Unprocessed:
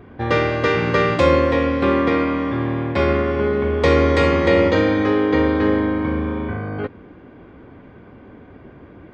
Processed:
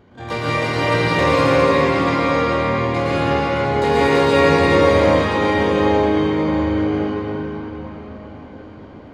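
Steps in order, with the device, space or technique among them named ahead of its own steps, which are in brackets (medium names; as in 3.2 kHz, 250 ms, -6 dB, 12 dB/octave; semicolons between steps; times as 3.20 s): shimmer-style reverb (harmony voices +12 st -6 dB; reverberation RT60 5.1 s, pre-delay 105 ms, DRR -9 dB); trim -9 dB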